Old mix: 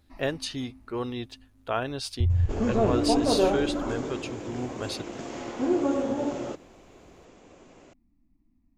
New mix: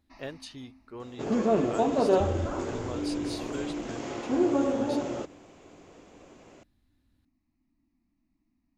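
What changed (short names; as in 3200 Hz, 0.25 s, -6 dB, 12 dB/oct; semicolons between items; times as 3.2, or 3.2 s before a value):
speech -10.5 dB; first sound: add tilt +2.5 dB/oct; second sound: entry -1.30 s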